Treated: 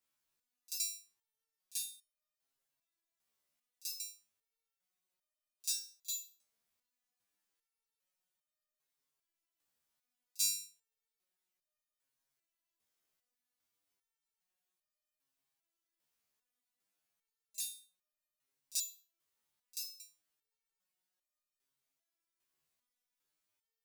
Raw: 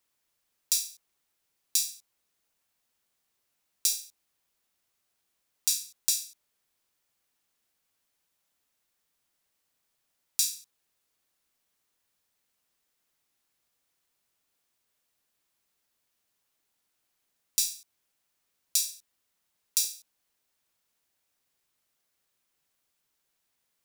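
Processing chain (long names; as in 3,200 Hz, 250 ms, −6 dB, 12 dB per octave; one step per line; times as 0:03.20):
echo ahead of the sound 36 ms −20.5 dB
step-sequenced resonator 2.5 Hz 74–610 Hz
level +1 dB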